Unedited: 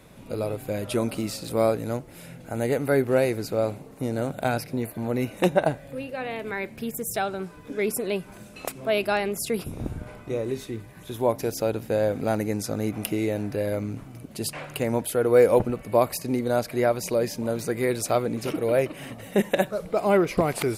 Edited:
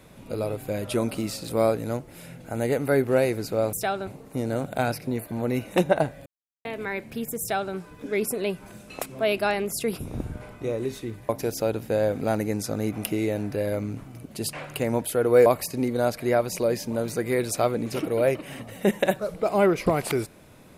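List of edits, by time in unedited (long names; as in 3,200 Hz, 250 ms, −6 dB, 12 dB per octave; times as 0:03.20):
0:05.92–0:06.31: silence
0:07.06–0:07.40: duplicate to 0:03.73
0:10.95–0:11.29: remove
0:15.46–0:15.97: remove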